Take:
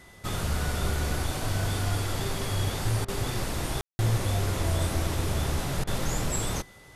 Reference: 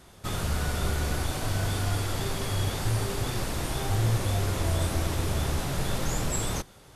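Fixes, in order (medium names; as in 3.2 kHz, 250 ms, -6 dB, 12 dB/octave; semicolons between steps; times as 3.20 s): band-stop 2 kHz, Q 30; room tone fill 3.81–3.99 s; interpolate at 3.05/5.84 s, 31 ms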